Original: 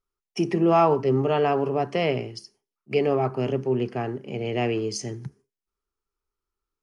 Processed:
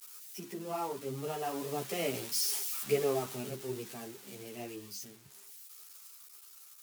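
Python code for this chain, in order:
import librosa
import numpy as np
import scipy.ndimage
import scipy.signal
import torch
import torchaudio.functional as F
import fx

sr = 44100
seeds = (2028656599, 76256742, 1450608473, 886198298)

y = x + 0.5 * 10.0 ** (-17.0 / 20.0) * np.diff(np.sign(x), prepend=np.sign(x[:1]))
y = fx.doppler_pass(y, sr, speed_mps=6, closest_m=3.1, pass_at_s=2.54)
y = fx.ensemble(y, sr)
y = F.gain(torch.from_numpy(y), -4.0).numpy()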